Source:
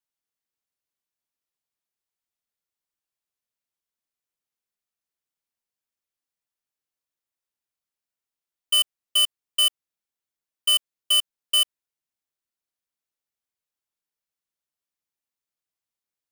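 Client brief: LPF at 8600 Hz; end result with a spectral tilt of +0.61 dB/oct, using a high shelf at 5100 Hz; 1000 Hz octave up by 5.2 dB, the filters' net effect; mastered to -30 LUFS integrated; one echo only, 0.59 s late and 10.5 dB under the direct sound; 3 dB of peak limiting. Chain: LPF 8600 Hz; bell 1000 Hz +7 dB; high shelf 5100 Hz -5 dB; limiter -18.5 dBFS; echo 0.59 s -10.5 dB; gain -3.5 dB

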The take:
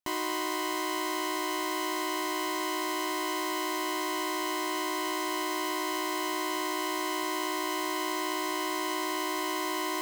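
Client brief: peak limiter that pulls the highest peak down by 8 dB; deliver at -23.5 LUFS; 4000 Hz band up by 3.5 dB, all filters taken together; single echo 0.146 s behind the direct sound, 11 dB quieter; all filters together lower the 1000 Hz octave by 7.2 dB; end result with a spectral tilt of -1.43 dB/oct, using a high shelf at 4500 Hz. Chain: bell 1000 Hz -8 dB; bell 4000 Hz +7 dB; high shelf 4500 Hz -3.5 dB; limiter -27.5 dBFS; echo 0.146 s -11 dB; gain +11.5 dB

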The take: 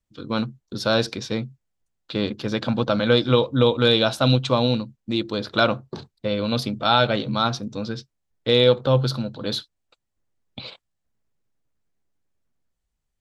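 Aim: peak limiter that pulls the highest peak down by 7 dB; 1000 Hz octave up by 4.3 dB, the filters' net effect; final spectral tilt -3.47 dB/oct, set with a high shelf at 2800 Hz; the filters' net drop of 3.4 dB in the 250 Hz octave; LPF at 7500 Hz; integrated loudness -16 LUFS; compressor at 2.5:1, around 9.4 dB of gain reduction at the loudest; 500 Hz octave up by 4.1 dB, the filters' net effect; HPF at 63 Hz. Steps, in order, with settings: HPF 63 Hz; LPF 7500 Hz; bell 250 Hz -5.5 dB; bell 500 Hz +4.5 dB; bell 1000 Hz +4 dB; high shelf 2800 Hz +5 dB; compressor 2.5:1, threshold -23 dBFS; gain +12.5 dB; limiter -2 dBFS

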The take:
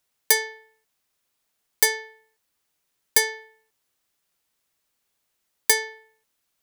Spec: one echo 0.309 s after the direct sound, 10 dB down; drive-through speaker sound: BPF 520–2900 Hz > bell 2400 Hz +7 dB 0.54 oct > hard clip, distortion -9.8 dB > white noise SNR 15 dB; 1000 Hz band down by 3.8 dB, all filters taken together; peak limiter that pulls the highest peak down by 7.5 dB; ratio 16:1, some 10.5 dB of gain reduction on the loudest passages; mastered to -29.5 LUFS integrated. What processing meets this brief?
bell 1000 Hz -4 dB; compressor 16:1, threshold -24 dBFS; limiter -14.5 dBFS; BPF 520–2900 Hz; bell 2400 Hz +7 dB 0.54 oct; echo 0.309 s -10 dB; hard clip -35.5 dBFS; white noise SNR 15 dB; gain +12.5 dB

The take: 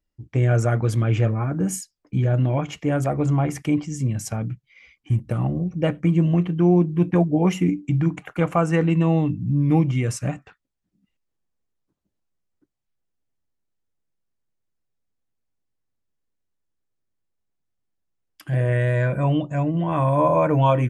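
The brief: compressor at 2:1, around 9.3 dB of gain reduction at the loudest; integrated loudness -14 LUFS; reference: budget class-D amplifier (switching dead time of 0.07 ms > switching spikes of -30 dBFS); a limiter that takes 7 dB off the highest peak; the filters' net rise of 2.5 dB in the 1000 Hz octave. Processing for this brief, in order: bell 1000 Hz +3 dB; compressor 2:1, threshold -30 dBFS; limiter -20.5 dBFS; switching dead time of 0.07 ms; switching spikes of -30 dBFS; gain +16.5 dB

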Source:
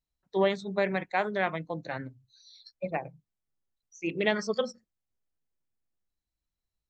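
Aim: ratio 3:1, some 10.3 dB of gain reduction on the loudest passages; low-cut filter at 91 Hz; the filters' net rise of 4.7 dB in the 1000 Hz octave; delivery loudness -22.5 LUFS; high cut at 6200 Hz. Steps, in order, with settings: HPF 91 Hz; LPF 6200 Hz; bell 1000 Hz +6.5 dB; compressor 3:1, threshold -33 dBFS; gain +15 dB

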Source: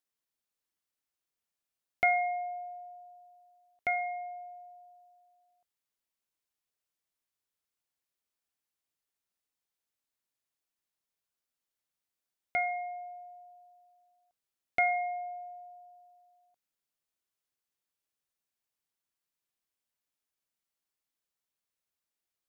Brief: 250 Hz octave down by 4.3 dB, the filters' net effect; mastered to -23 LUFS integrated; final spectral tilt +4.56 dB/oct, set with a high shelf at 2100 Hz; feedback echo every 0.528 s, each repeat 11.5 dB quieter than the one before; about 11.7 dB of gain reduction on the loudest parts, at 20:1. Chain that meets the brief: bell 250 Hz -6 dB; high shelf 2100 Hz -5 dB; compressor 20:1, threshold -35 dBFS; feedback echo 0.528 s, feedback 27%, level -11.5 dB; gain +18 dB

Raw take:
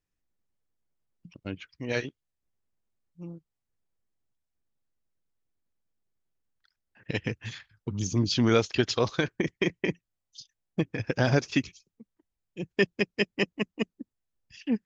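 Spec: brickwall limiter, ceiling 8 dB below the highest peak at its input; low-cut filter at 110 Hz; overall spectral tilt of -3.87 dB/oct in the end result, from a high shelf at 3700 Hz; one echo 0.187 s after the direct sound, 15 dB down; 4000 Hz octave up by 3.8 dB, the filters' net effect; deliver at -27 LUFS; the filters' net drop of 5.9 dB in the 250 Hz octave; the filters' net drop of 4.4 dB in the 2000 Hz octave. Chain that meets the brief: HPF 110 Hz; bell 250 Hz -7.5 dB; bell 2000 Hz -8.5 dB; high shelf 3700 Hz +6 dB; bell 4000 Hz +3.5 dB; limiter -18 dBFS; echo 0.187 s -15 dB; gain +7 dB

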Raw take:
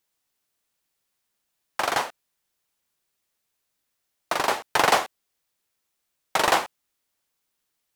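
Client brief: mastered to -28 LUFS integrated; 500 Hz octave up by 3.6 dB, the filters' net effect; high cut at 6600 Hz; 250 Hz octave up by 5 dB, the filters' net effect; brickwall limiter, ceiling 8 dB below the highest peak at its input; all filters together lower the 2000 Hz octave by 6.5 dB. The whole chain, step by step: LPF 6600 Hz; bell 250 Hz +5.5 dB; bell 500 Hz +4 dB; bell 2000 Hz -9 dB; limiter -12.5 dBFS

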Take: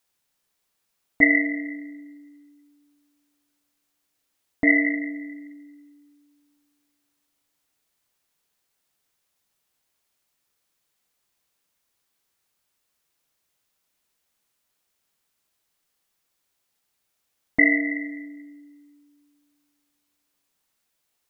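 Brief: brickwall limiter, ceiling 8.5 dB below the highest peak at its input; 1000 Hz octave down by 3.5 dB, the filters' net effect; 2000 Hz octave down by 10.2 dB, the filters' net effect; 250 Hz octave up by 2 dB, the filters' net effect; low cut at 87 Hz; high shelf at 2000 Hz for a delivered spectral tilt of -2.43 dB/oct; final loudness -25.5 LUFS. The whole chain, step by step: HPF 87 Hz; bell 250 Hz +3 dB; bell 1000 Hz -5.5 dB; high shelf 2000 Hz -7.5 dB; bell 2000 Hz -5.5 dB; gain +3 dB; limiter -14 dBFS

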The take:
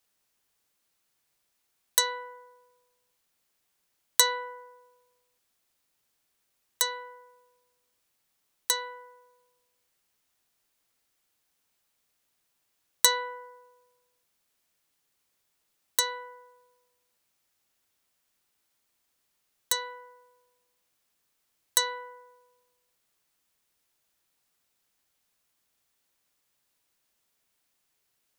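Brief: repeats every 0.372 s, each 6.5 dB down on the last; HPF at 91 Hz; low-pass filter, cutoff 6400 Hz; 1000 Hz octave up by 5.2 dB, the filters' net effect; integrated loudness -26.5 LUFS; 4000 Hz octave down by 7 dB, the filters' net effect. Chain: HPF 91 Hz; LPF 6400 Hz; bell 1000 Hz +5.5 dB; bell 4000 Hz -7 dB; feedback echo 0.372 s, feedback 47%, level -6.5 dB; gain +7 dB

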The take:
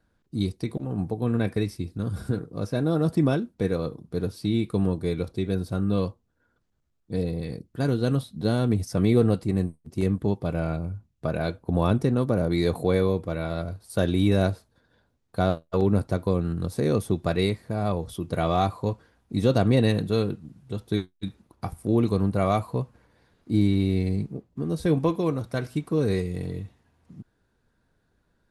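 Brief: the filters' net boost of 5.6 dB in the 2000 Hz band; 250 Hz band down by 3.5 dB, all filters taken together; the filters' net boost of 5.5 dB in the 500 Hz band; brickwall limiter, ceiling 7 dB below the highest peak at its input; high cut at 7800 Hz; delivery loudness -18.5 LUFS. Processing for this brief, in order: LPF 7800 Hz; bell 250 Hz -8 dB; bell 500 Hz +8.5 dB; bell 2000 Hz +7 dB; gain +7.5 dB; limiter -5.5 dBFS

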